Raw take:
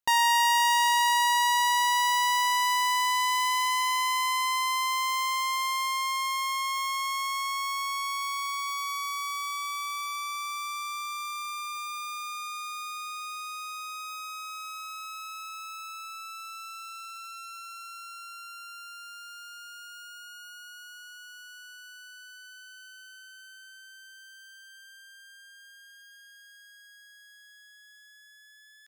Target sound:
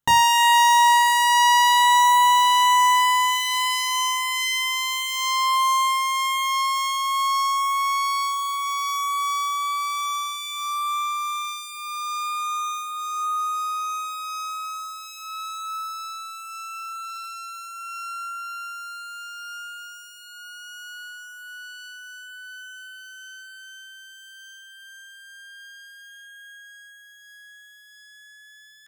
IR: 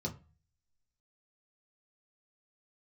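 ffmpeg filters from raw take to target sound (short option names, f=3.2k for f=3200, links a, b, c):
-filter_complex "[0:a]asplit=2[a][b];[1:a]atrim=start_sample=2205,afade=t=out:st=0.22:d=0.01,atrim=end_sample=10143,lowshelf=f=180:g=9.5[c];[b][c]afir=irnorm=-1:irlink=0,volume=-3.5dB[d];[a][d]amix=inputs=2:normalize=0,volume=7dB"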